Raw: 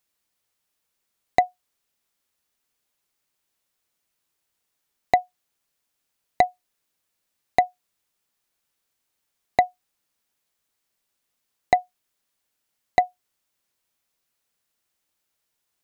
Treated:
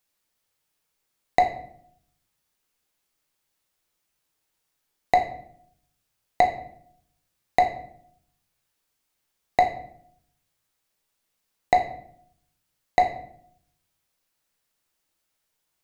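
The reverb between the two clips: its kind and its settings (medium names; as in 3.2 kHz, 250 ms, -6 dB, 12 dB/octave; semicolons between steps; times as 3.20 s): simulated room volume 110 m³, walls mixed, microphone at 0.63 m; trim -1 dB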